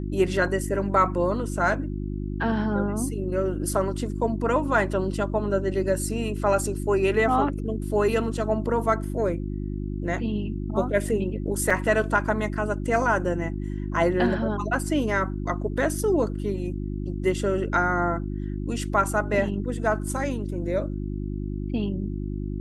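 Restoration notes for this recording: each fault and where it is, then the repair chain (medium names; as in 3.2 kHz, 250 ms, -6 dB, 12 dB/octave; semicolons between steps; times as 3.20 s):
hum 50 Hz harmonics 7 -30 dBFS
11.70 s: dropout 4.7 ms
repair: de-hum 50 Hz, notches 7; interpolate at 11.70 s, 4.7 ms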